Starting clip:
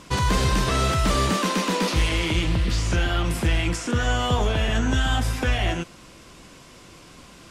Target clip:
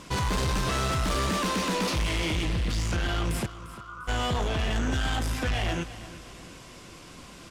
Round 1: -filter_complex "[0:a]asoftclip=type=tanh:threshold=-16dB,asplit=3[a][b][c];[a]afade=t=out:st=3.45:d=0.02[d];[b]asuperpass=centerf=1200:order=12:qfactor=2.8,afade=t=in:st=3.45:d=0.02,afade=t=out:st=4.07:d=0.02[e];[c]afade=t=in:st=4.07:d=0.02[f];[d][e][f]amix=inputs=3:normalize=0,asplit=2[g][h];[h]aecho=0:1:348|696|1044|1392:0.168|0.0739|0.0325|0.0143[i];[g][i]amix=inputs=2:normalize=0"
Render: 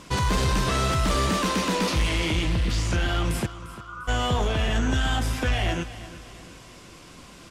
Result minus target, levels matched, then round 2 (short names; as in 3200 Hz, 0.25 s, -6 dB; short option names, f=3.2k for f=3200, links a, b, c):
soft clip: distortion -8 dB
-filter_complex "[0:a]asoftclip=type=tanh:threshold=-23.5dB,asplit=3[a][b][c];[a]afade=t=out:st=3.45:d=0.02[d];[b]asuperpass=centerf=1200:order=12:qfactor=2.8,afade=t=in:st=3.45:d=0.02,afade=t=out:st=4.07:d=0.02[e];[c]afade=t=in:st=4.07:d=0.02[f];[d][e][f]amix=inputs=3:normalize=0,asplit=2[g][h];[h]aecho=0:1:348|696|1044|1392:0.168|0.0739|0.0325|0.0143[i];[g][i]amix=inputs=2:normalize=0"